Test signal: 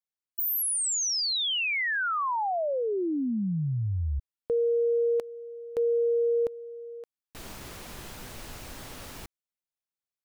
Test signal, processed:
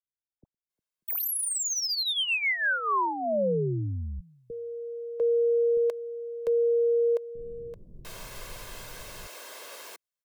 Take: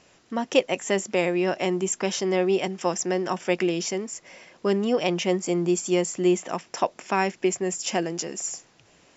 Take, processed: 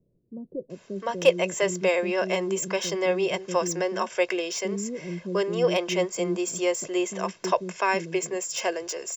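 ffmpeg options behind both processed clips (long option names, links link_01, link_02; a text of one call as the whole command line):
ffmpeg -i in.wav -filter_complex "[0:a]equalizer=frequency=70:width_type=o:width=1.1:gain=-9.5,aecho=1:1:1.9:0.55,acrossover=split=120|2700[link_01][link_02][link_03];[link_03]asoftclip=type=tanh:threshold=-25.5dB[link_04];[link_01][link_02][link_04]amix=inputs=3:normalize=0,acrossover=split=320[link_05][link_06];[link_06]adelay=700[link_07];[link_05][link_07]amix=inputs=2:normalize=0" out.wav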